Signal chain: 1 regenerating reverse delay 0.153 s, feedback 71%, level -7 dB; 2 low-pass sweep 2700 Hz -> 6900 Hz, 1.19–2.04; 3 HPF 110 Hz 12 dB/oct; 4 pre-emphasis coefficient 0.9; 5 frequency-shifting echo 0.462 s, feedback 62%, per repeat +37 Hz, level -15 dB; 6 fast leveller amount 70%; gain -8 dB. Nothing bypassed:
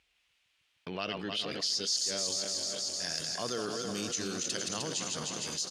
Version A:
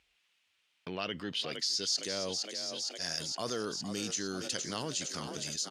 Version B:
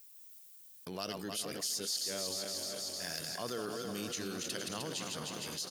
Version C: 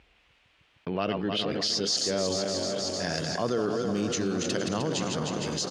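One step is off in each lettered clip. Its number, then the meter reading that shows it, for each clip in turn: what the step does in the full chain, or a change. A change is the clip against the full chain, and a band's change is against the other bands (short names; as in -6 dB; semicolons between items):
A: 1, 8 kHz band -2.5 dB; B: 2, momentary loudness spread change +9 LU; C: 4, 8 kHz band -10.0 dB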